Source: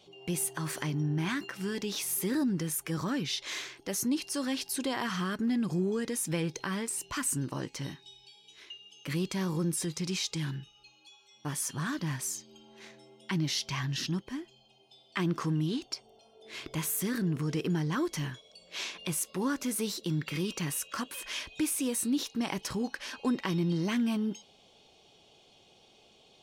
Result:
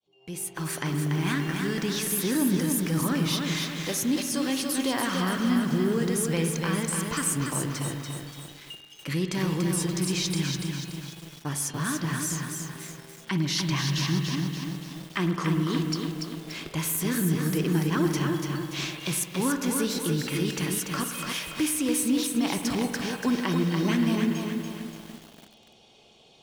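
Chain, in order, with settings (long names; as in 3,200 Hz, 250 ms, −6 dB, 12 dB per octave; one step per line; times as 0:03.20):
fade in at the beginning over 0.79 s
spring reverb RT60 2.4 s, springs 49 ms, chirp 40 ms, DRR 7 dB
feedback echo at a low word length 288 ms, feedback 55%, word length 8 bits, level −4 dB
level +3.5 dB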